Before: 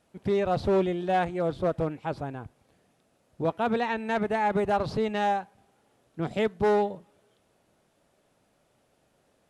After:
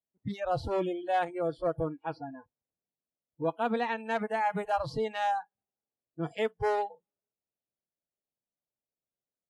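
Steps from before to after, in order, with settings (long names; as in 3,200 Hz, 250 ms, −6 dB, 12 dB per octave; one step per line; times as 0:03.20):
low-pass that shuts in the quiet parts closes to 850 Hz, open at −25.5 dBFS
noise reduction from a noise print of the clip's start 30 dB
level −2.5 dB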